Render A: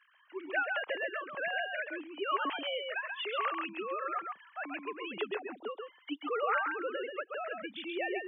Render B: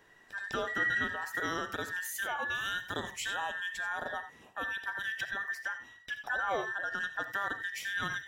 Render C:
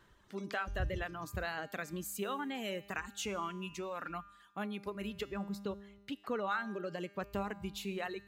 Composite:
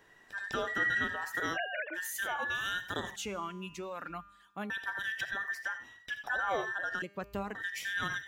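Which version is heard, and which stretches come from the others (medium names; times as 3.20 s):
B
1.55–1.96 s: from A, crossfade 0.06 s
3.16–4.70 s: from C
7.02–7.55 s: from C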